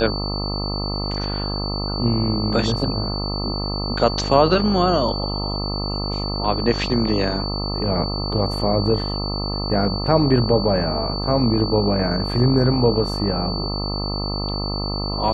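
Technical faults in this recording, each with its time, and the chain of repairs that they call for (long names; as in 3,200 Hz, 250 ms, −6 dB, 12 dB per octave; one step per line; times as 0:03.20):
mains buzz 50 Hz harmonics 26 −26 dBFS
whistle 4,500 Hz −28 dBFS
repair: notch filter 4,500 Hz, Q 30
hum removal 50 Hz, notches 26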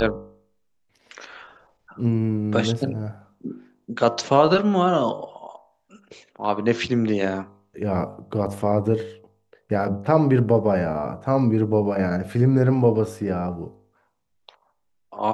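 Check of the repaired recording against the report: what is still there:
none of them is left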